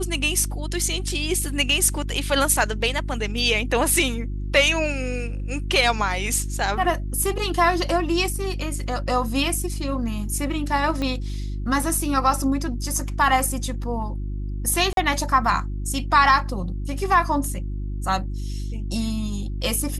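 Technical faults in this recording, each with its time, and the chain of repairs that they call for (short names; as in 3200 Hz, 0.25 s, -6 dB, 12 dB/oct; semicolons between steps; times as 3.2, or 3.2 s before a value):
hum 50 Hz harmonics 7 -28 dBFS
11.02 pop -15 dBFS
14.93–14.97 gap 42 ms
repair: de-click; de-hum 50 Hz, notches 7; interpolate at 14.93, 42 ms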